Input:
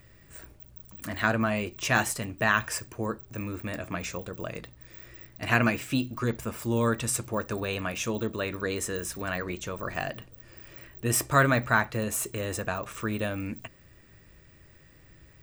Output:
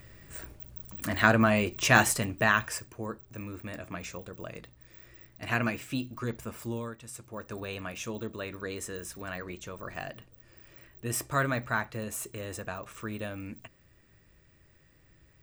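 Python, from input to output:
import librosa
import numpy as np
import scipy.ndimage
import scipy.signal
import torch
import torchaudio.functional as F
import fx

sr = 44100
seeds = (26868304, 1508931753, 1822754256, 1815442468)

y = fx.gain(x, sr, db=fx.line((2.19, 3.5), (2.93, -5.5), (6.68, -5.5), (6.97, -18.0), (7.58, -6.5)))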